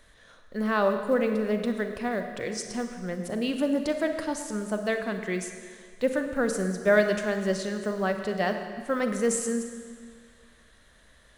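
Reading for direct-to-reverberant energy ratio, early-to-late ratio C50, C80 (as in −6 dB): 6.0 dB, 7.0 dB, 8.0 dB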